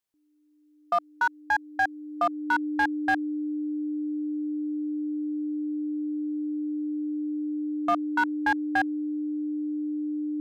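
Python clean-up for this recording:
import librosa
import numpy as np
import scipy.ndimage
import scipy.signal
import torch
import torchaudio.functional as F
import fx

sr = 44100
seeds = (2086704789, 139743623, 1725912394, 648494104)

y = fx.fix_declip(x, sr, threshold_db=-17.0)
y = fx.notch(y, sr, hz=300.0, q=30.0)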